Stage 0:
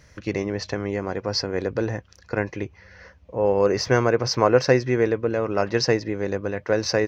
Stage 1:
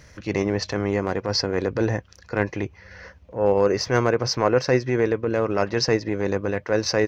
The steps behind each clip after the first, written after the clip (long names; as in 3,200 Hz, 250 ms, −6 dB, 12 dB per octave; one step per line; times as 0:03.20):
in parallel at +1 dB: speech leveller within 4 dB 0.5 s
on the sum: transient designer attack −7 dB, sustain −3 dB
level −4 dB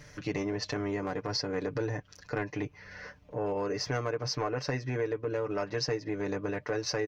comb filter 6.8 ms, depth 79%
downward compressor 4 to 1, threshold −26 dBFS, peak gain reduction 12 dB
level −4 dB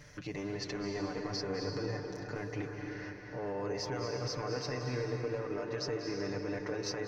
brickwall limiter −26 dBFS, peak gain reduction 8 dB
on a send at −2 dB: convolution reverb RT60 3.6 s, pre-delay 195 ms
on the sum: level −3 dB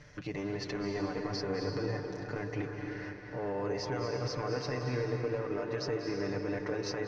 in parallel at −8 dB: dead-zone distortion −51 dBFS
on the sum: high-frequency loss of the air 87 metres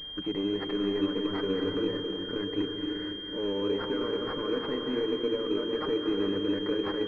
phaser with its sweep stopped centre 300 Hz, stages 4
switching amplifier with a slow clock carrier 3,200 Hz
level +8 dB